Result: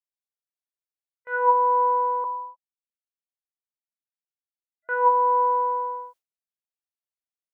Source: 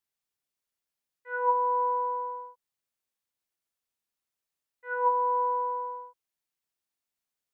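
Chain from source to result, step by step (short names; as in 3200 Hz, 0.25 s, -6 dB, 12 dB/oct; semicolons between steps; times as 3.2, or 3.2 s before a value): 2.24–4.89 sine-wave speech; low shelf 480 Hz -5.5 dB; gate with hold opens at -42 dBFS; bell 630 Hz +7 dB 0.36 oct; gain +7 dB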